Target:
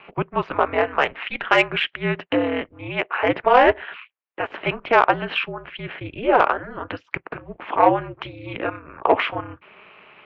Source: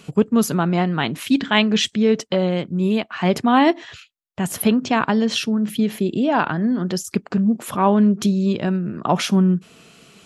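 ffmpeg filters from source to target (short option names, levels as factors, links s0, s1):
-af "highpass=f=590:t=q:w=0.5412,highpass=f=590:t=q:w=1.307,lowpass=f=2800:t=q:w=0.5176,lowpass=f=2800:t=q:w=0.7071,lowpass=f=2800:t=q:w=1.932,afreqshift=-160,acontrast=77,aeval=exprs='val(0)*sin(2*PI*110*n/s)':c=same,volume=1.26"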